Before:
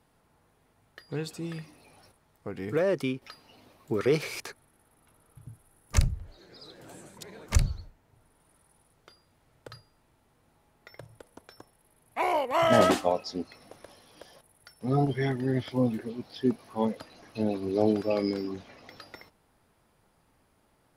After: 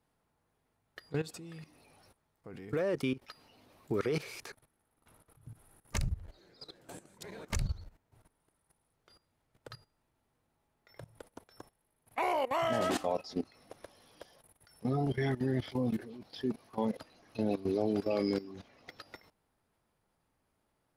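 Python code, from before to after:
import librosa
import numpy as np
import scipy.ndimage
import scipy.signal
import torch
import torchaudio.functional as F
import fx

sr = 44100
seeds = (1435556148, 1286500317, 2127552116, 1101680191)

y = fx.level_steps(x, sr, step_db=16)
y = y * 10.0 ** (1.5 / 20.0)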